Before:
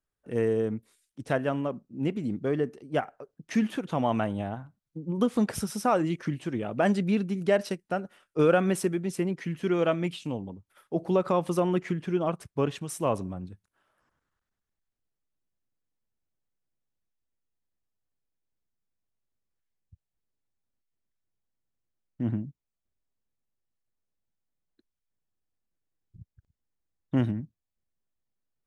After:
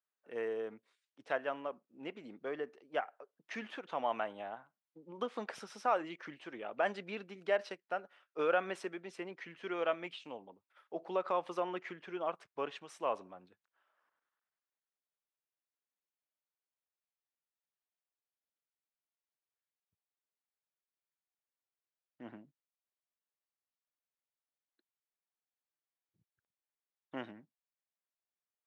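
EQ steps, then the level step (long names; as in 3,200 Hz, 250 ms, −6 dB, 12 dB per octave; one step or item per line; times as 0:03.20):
band-pass filter 610–3,600 Hz
−4.5 dB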